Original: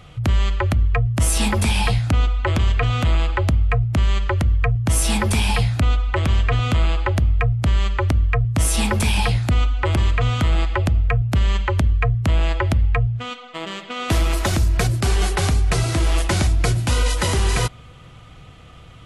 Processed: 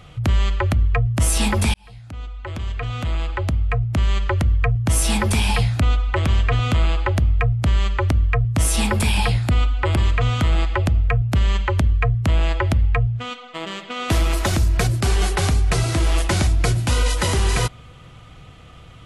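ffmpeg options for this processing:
-filter_complex "[0:a]asettb=1/sr,asplit=3[a][b][c];[a]atrim=end=8.884[d];[b]atrim=start=8.88:end=10.04,asetpts=PTS-STARTPTS,afade=t=in:d=0.004:c=qsin,afade=t=out:st=1.156:d=0.004:c=qsin,bandreject=f=6.1k:w=8.3[e];[c]atrim=start=10.036[f];[d][e]acrossfade=d=0.004:c1=hsin:c2=qsin[g];[g][f]acrossfade=d=0.004:c1=qsin:c2=hsin,asplit=2[h][i];[h]atrim=end=1.74,asetpts=PTS-STARTPTS,afade=t=out:st=1.736:d=0.004:c=hsin[j];[i]atrim=start=1.74,asetpts=PTS-STARTPTS,afade=t=in:d=2.57[k];[j][k]concat=n=2:v=0:a=1"

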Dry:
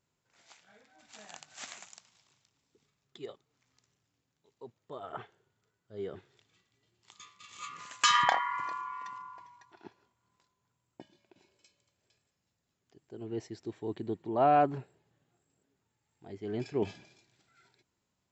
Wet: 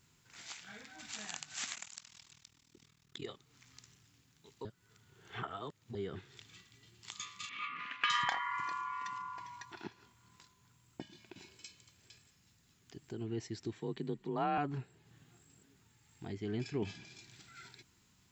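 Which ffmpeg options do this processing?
-filter_complex "[0:a]asettb=1/sr,asplit=3[a][b][c];[a]atrim=end=1.754[d];[b]atrim=start=1.75:end=3.26,asetpts=PTS-STARTPTS,afade=t=in:d=0.004:c=qsin,afade=t=out:st=1.506:d=0.004:c=qsin,tremolo=f=40:d=0.947[e];[c]atrim=start=3.256[f];[d][e]acrossfade=d=0.004:c1=hsin:c2=qsin[g];[g][f]acrossfade=d=0.004:c1=qsin:c2=hsin,asettb=1/sr,asplit=3[h][i][j];[h]atrim=end=7.494[k];[i]atrim=start=7.49:end=8.1,asetpts=PTS-STARTPTS,afade=t=in:d=0.004:c=qsin,afade=t=out:st=0.606:d=0.004:c=qsin,highpass=230,equalizer=f=250:t=q:w=4:g=5,equalizer=f=380:t=q:w=4:g=-5,equalizer=f=550:t=q:w=4:g=-3,equalizer=f=870:t=q:w=4:g=-8,equalizer=f=2.3k:t=q:w=4:g=4,lowpass=f=2.9k:w=0.5412,lowpass=f=2.9k:w=1.3066[l];[j]atrim=start=8.096[m];[k][l]acrossfade=d=0.004:c1=hsin:c2=qsin[n];[n][m]acrossfade=d=0.004:c1=qsin:c2=hsin,asettb=1/sr,asplit=3[o][p][q];[o]atrim=end=13.784[r];[p]atrim=start=13.78:end=14.58,asetpts=PTS-STARTPTS,afade=t=in:d=0.004:c=qsin,afade=t=out:st=0.796:d=0.004:c=qsin,afreqshift=34[s];[q]atrim=start=14.576[t];[r][s]acrossfade=d=0.004:c1=hsin:c2=qsin[u];[u][t]acrossfade=d=0.004:c1=qsin:c2=hsin,asplit=3[v][w][x];[v]atrim=end=4.652[y];[w]atrim=start=4.648:end=5.952,asetpts=PTS-STARTPTS,areverse[z];[x]atrim=start=5.948[aa];[y][z]acrossfade=d=0.004:c1=hsin:c2=hsin[ab];[ab][aa]acrossfade=d=0.004:c1=hsin:c2=hsin,equalizer=f=590:w=0.82:g=-10.5,acompressor=threshold=-60dB:ratio=2,bandreject=f=580:w=12,volume=14.5dB"

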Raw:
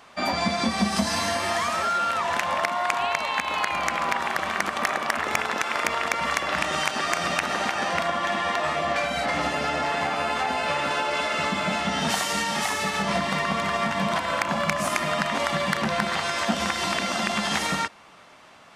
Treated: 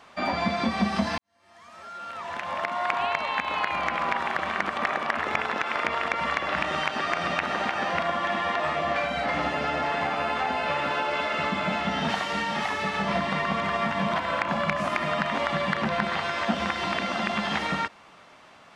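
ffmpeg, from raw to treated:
-filter_complex "[0:a]asplit=2[a][b];[a]atrim=end=1.18,asetpts=PTS-STARTPTS,afade=t=out:st=1.176:d=0.004:c=hsin[c];[b]atrim=start=1.18,asetpts=PTS-STARTPTS,afade=t=in:d=1.74:c=qua[d];[c][d]concat=n=2:v=0:a=1,acrossover=split=4200[e][f];[f]acompressor=threshold=-48dB:ratio=4:attack=1:release=60[g];[e][g]amix=inputs=2:normalize=0,highshelf=f=8.8k:g=-9.5,volume=-1dB"

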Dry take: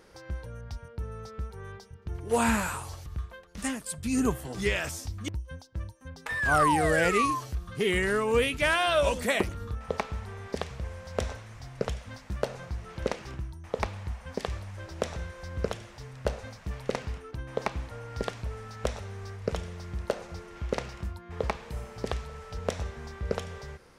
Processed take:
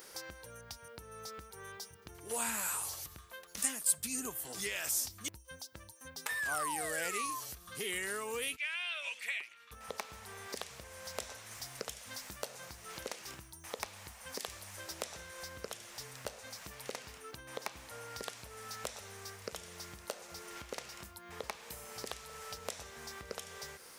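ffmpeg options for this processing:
-filter_complex "[0:a]asplit=3[a][b][c];[a]afade=t=out:st=8.55:d=0.02[d];[b]bandpass=f=2.4k:t=q:w=3.9,afade=t=in:st=8.55:d=0.02,afade=t=out:st=9.71:d=0.02[e];[c]afade=t=in:st=9.71:d=0.02[f];[d][e][f]amix=inputs=3:normalize=0,asettb=1/sr,asplit=3[g][h][i];[g]atrim=end=11.514[j];[h]atrim=start=11.51:end=14.92,asetpts=PTS-STARTPTS,afade=t=in:d=0.004:c=qsin,afade=t=out:st=3.406:d=0.004:c=qsin,highshelf=f=5.6k:g=3.5[k];[i]atrim=start=14.916[l];[j][k]acrossfade=d=0.004:c1=hsin:c2=qsin[m];[m][l]acrossfade=d=0.004:c1=qsin:c2=hsin,acompressor=threshold=-43dB:ratio=2.5,aemphasis=mode=production:type=riaa,volume=1dB"

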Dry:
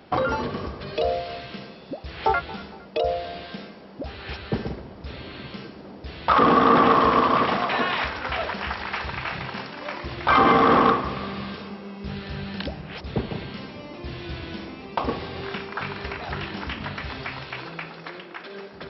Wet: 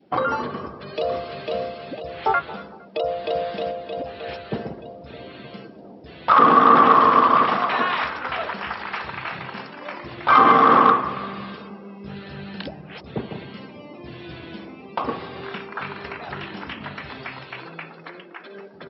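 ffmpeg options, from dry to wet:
-filter_complex "[0:a]asplit=2[a][b];[b]afade=t=in:st=0.59:d=0.01,afade=t=out:st=1.5:d=0.01,aecho=0:1:500|1000|1500|2000|2500:0.794328|0.317731|0.127093|0.050837|0.0203348[c];[a][c]amix=inputs=2:normalize=0,asplit=2[d][e];[e]afade=t=in:st=2.86:d=0.01,afade=t=out:st=3.4:d=0.01,aecho=0:1:310|620|930|1240|1550|1860|2170|2480|2790|3100|3410|3720:0.944061|0.660843|0.46259|0.323813|0.226669|0.158668|0.111068|0.0777475|0.0544232|0.0380963|0.0266674|0.0186672[f];[d][f]amix=inputs=2:normalize=0,adynamicequalizer=threshold=0.0251:dfrequency=1200:dqfactor=1.9:tfrequency=1200:tqfactor=1.9:attack=5:release=100:ratio=0.375:range=3.5:mode=boostabove:tftype=bell,afftdn=nr=13:nf=-43,highpass=130,volume=-1dB"

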